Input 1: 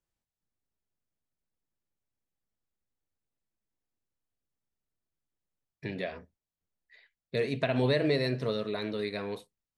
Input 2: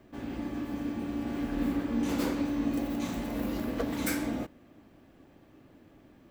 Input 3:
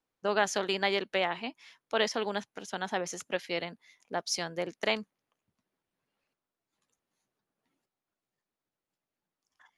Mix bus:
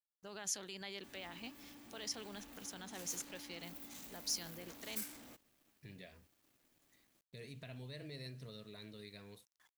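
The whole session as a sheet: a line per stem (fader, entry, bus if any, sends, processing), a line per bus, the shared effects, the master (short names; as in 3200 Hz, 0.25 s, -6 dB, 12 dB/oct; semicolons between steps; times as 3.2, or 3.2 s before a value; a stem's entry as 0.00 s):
-7.5 dB, 0.00 s, bus A, no send, low shelf 230 Hz +10 dB
-3.0 dB, 0.90 s, no bus, no send, hard clip -33 dBFS, distortion -8 dB
+0.5 dB, 0.00 s, bus A, no send, low shelf 380 Hz +8.5 dB
bus A: 0.0 dB, low shelf 200 Hz +10 dB; limiter -23.5 dBFS, peak gain reduction 13 dB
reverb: off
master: pre-emphasis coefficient 0.9; bit-crush 12-bit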